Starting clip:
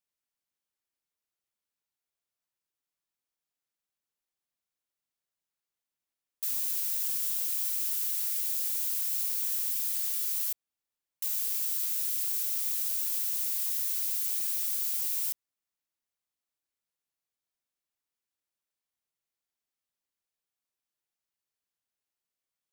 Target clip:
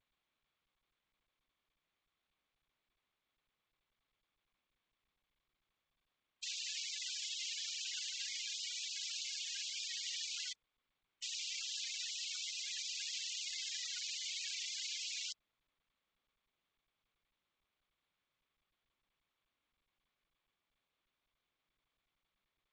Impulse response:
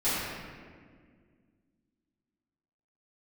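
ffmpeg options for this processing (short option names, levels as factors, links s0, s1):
-af "afftfilt=real='re*gte(hypot(re,im),0.00562)':imag='im*gte(hypot(re,im),0.00562)':win_size=1024:overlap=0.75,lowpass=3100,volume=4.47" -ar 16000 -c:a g722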